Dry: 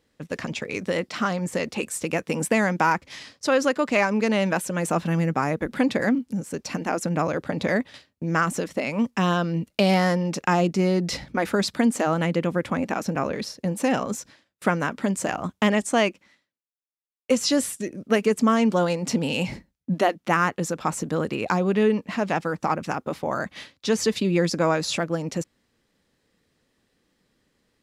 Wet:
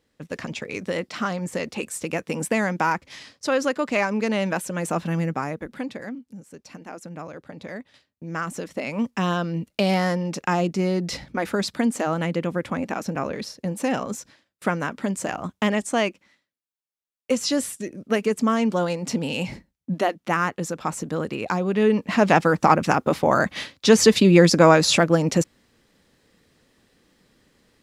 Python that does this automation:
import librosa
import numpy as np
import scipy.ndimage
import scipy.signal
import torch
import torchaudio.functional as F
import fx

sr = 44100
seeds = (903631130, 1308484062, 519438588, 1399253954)

y = fx.gain(x, sr, db=fx.line((5.25, -1.5), (6.07, -12.5), (7.77, -12.5), (8.93, -1.5), (21.7, -1.5), (22.25, 8.0)))